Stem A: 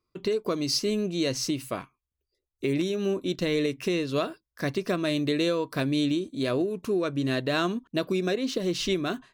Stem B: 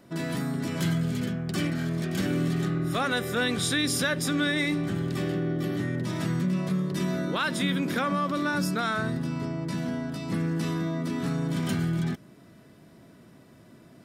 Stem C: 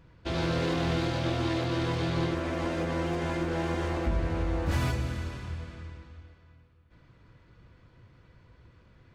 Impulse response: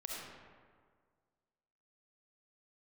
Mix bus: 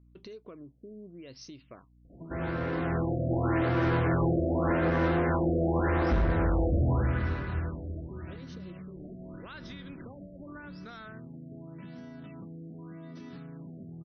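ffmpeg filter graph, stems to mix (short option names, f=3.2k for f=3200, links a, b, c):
-filter_complex "[0:a]alimiter=limit=-19dB:level=0:latency=1,aeval=exprs='val(0)+0.00398*(sin(2*PI*60*n/s)+sin(2*PI*2*60*n/s)/2+sin(2*PI*3*60*n/s)/3+sin(2*PI*4*60*n/s)/4+sin(2*PI*5*60*n/s)/5)':c=same,volume=-9.5dB[a];[1:a]acompressor=threshold=-33dB:ratio=6,adelay=2100,volume=1.5dB[b];[2:a]dynaudnorm=f=360:g=7:m=9dB,lowpass=f=1.6k:t=q:w=1.6,adelay=2050,volume=-4.5dB[c];[a][b]amix=inputs=2:normalize=0,acompressor=threshold=-50dB:ratio=2,volume=0dB[d];[c][d]amix=inputs=2:normalize=0,equalizer=f=990:w=1.5:g=-2,asoftclip=type=hard:threshold=-21dB,afftfilt=real='re*lt(b*sr/1024,700*pow(6500/700,0.5+0.5*sin(2*PI*0.85*pts/sr)))':imag='im*lt(b*sr/1024,700*pow(6500/700,0.5+0.5*sin(2*PI*0.85*pts/sr)))':win_size=1024:overlap=0.75"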